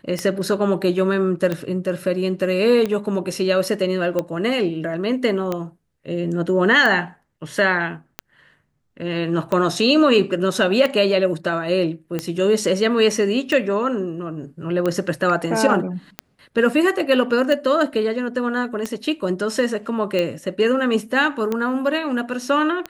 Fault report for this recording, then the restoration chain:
scratch tick 45 rpm −10 dBFS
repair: click removal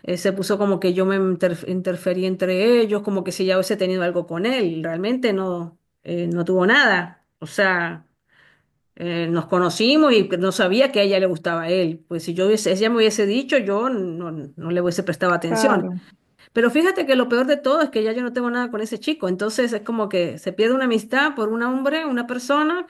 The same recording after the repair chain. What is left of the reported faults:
none of them is left

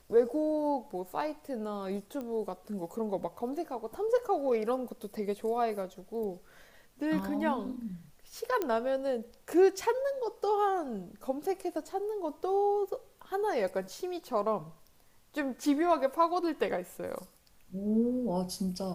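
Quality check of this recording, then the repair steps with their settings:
0:02.21: click −27 dBFS
0:08.62: click −18 dBFS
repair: click removal

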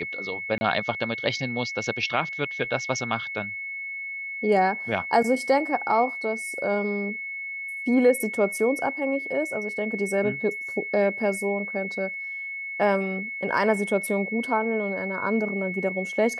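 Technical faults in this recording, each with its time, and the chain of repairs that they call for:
whistle 2,200 Hz −31 dBFS
0:00.58–0:00.61: drop-out 30 ms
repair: notch filter 2,200 Hz, Q 30
repair the gap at 0:00.58, 30 ms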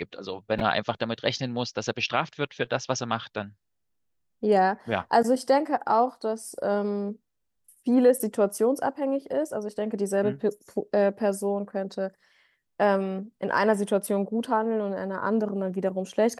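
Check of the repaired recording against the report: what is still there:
none of them is left

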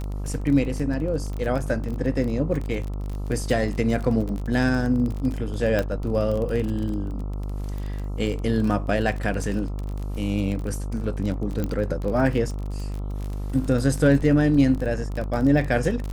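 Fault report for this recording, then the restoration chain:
mains buzz 50 Hz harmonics 27 −29 dBFS
surface crackle 25 per second −28 dBFS
0:05.79: click −11 dBFS
0:11.64: click −14 dBFS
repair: click removal
hum removal 50 Hz, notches 27

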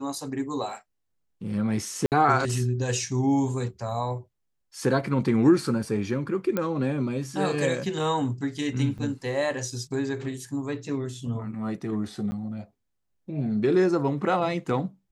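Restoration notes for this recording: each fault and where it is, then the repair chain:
0:02.06–0:02.12: drop-out 58 ms
0:06.57: click −13 dBFS
0:08.98–0:08.99: drop-out 6.5 ms
0:12.31–0:12.32: drop-out 10 ms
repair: click removal
repair the gap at 0:02.06, 58 ms
repair the gap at 0:08.98, 6.5 ms
repair the gap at 0:12.31, 10 ms

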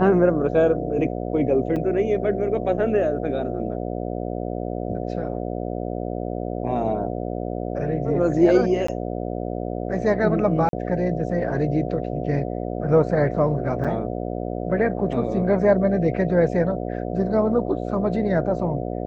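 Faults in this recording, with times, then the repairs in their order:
mains buzz 60 Hz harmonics 12 −28 dBFS
0:01.76–0:01.77: drop-out 5.6 ms
0:08.87–0:08.88: drop-out 14 ms
0:10.69–0:10.73: drop-out 42 ms
0:13.84–0:13.85: drop-out 6.3 ms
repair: hum removal 60 Hz, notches 12
repair the gap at 0:01.76, 5.6 ms
repair the gap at 0:08.87, 14 ms
repair the gap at 0:10.69, 42 ms
repair the gap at 0:13.84, 6.3 ms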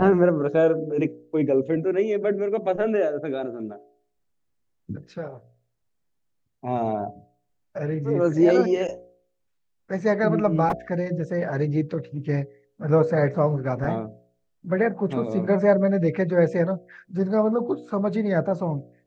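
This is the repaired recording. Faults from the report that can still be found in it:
none of them is left

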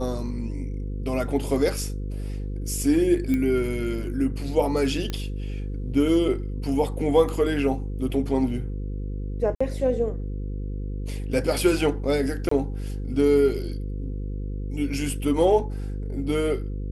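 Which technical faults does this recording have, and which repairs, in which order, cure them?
mains buzz 50 Hz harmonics 10 −30 dBFS
0:03.34: click −15 dBFS
0:05.10: click −15 dBFS
0:09.55–0:09.61: drop-out 55 ms
0:12.49–0:12.51: drop-out 24 ms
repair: click removal
hum removal 50 Hz, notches 10
repair the gap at 0:09.55, 55 ms
repair the gap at 0:12.49, 24 ms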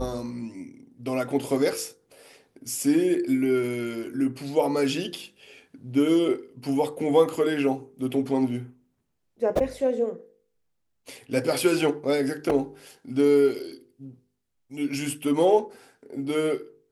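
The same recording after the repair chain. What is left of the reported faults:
none of them is left

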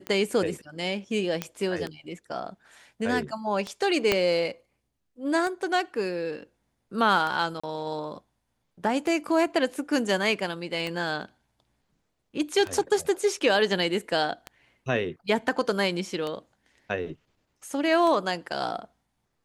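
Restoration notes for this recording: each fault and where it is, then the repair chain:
scratch tick 33 1/3 rpm −18 dBFS
0:01.42: click −13 dBFS
0:04.12: click −7 dBFS
0:07.60–0:07.63: drop-out 35 ms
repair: click removal
repair the gap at 0:07.60, 35 ms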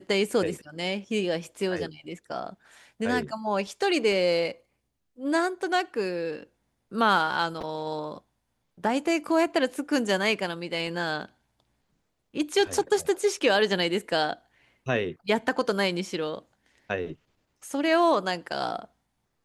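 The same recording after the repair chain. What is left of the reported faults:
0:04.12: click

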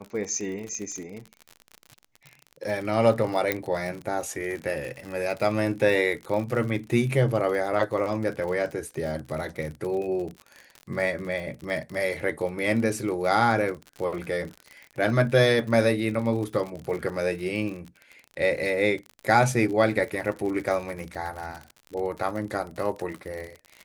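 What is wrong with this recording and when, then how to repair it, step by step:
surface crackle 54 per second −32 dBFS
0:03.52: click −9 dBFS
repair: click removal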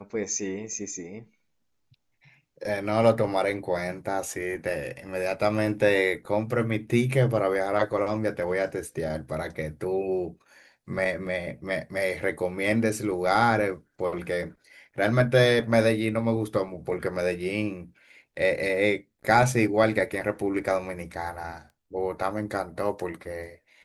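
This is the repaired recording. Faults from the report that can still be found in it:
none of them is left

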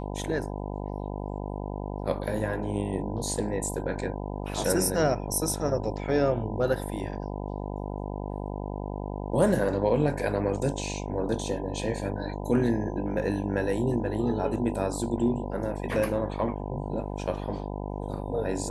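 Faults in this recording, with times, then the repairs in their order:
mains buzz 50 Hz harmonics 20 −34 dBFS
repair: hum removal 50 Hz, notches 20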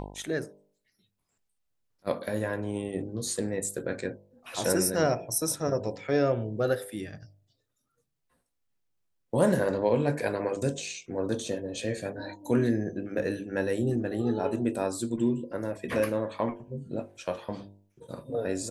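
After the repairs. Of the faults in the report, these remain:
none of them is left

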